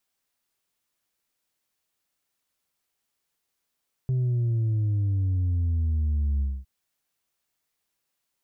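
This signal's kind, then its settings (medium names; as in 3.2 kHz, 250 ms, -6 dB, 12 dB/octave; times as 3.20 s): sub drop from 130 Hz, over 2.56 s, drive 2.5 dB, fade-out 0.24 s, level -22 dB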